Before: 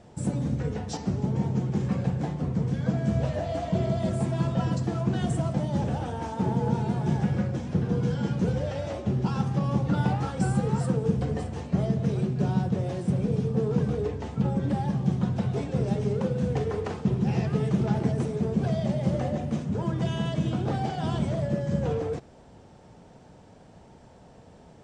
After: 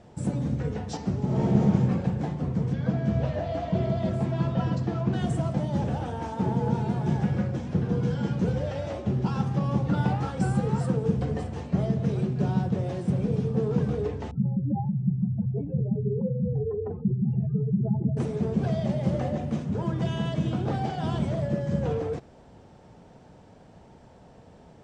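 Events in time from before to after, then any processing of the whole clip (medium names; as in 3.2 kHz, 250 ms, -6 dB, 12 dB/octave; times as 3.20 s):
1.24–1.69 s: reverb throw, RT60 1.6 s, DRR -6 dB
2.73–5.13 s: low-pass 5.3 kHz
14.31–18.17 s: spectral contrast enhancement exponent 2.4
whole clip: treble shelf 7 kHz -7 dB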